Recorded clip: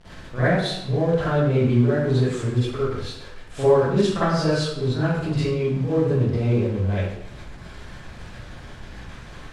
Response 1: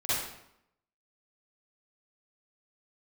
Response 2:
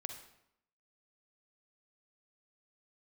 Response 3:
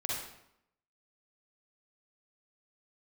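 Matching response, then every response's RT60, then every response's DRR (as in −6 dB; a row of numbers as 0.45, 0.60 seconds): 1; 0.75, 0.75, 0.75 seconds; −14.0, 5.5, −4.5 decibels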